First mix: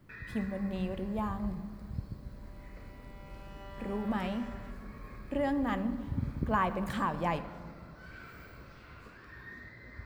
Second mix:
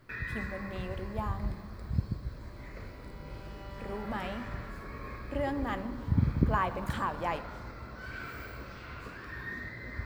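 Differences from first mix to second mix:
speech: add bell 150 Hz -9.5 dB 1.6 oct; first sound +8.0 dB

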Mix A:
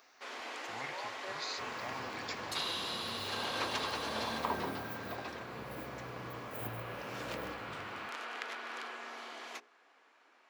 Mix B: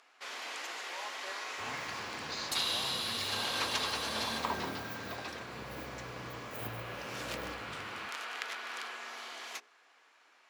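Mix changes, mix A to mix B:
speech: entry +0.90 s; first sound: add tilt +2.5 dB/oct; master: add bell 64 Hz +5.5 dB 0.29 oct

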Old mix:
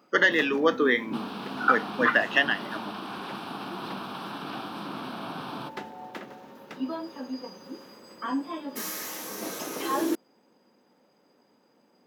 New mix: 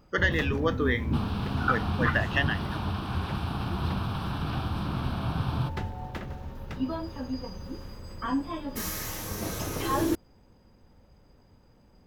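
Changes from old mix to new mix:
speech -5.0 dB; master: remove HPF 230 Hz 24 dB/oct

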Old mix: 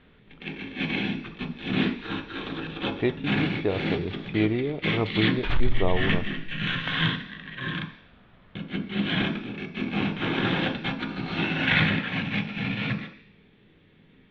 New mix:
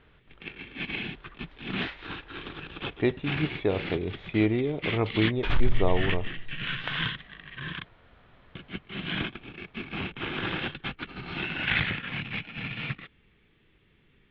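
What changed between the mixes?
first sound: add air absorption 150 m; reverb: off

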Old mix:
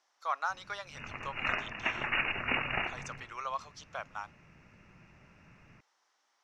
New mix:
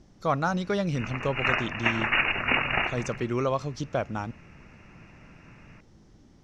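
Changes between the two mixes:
speech: remove ladder high-pass 790 Hz, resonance 30%; background +7.0 dB

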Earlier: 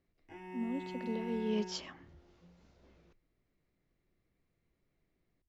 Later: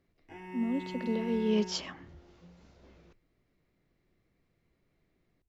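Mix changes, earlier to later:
speech +6.0 dB; reverb: on, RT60 1.1 s

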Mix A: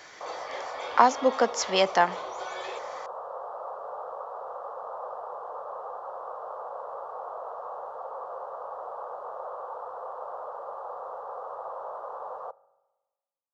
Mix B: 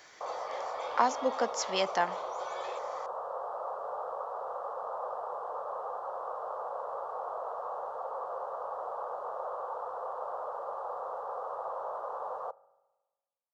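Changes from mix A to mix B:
speech -7.5 dB; master: add high shelf 6600 Hz +6 dB

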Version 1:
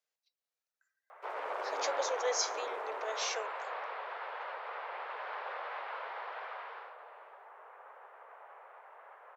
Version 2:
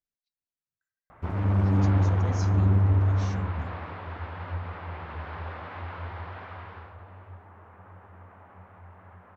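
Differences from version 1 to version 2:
speech -11.5 dB; master: remove steep high-pass 450 Hz 48 dB/oct

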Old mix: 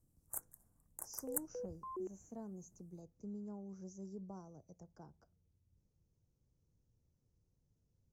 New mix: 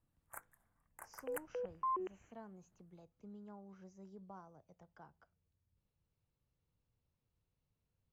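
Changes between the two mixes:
speech -7.0 dB; first sound -6.0 dB; master: remove EQ curve 360 Hz 0 dB, 3200 Hz -24 dB, 5800 Hz +6 dB

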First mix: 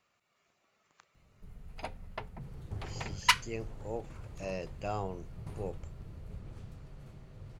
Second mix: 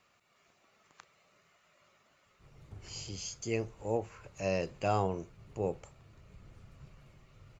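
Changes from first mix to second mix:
speech +6.0 dB; first sound: muted; second sound -8.5 dB

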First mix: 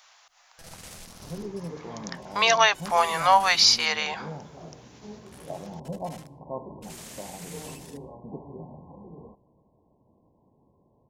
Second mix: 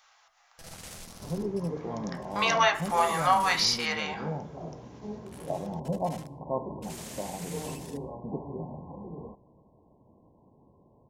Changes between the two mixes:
speech -9.0 dB; second sound +4.0 dB; reverb: on, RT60 0.50 s

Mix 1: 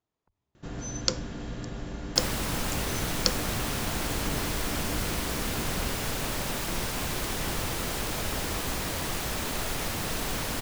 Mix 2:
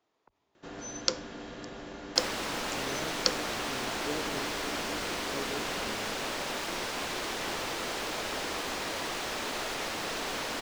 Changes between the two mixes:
speech +12.0 dB; master: add three-band isolator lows -17 dB, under 260 Hz, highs -13 dB, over 6900 Hz

